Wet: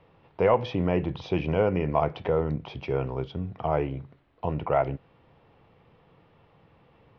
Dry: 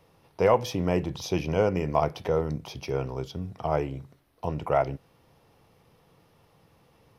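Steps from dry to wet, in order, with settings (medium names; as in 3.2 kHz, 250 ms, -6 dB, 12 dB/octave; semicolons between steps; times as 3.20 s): low-pass 3.3 kHz 24 dB/octave; in parallel at -2 dB: peak limiter -18 dBFS, peak gain reduction 8.5 dB; on the sum: trim -3 dB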